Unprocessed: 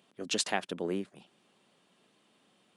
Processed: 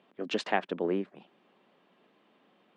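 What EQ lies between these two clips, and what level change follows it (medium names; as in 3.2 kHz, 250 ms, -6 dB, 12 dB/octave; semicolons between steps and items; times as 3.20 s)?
band-pass 200–2200 Hz; peaking EQ 1.4 kHz -2.5 dB 0.21 oct; +4.5 dB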